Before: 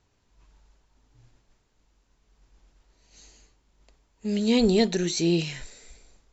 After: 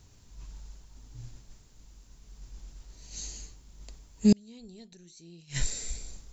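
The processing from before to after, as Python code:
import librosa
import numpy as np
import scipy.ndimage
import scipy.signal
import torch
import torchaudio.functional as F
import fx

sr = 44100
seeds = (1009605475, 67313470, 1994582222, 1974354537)

y = fx.bass_treble(x, sr, bass_db=10, treble_db=12)
y = fx.gate_flip(y, sr, shuts_db=-14.0, range_db=-37)
y = y * librosa.db_to_amplitude(4.0)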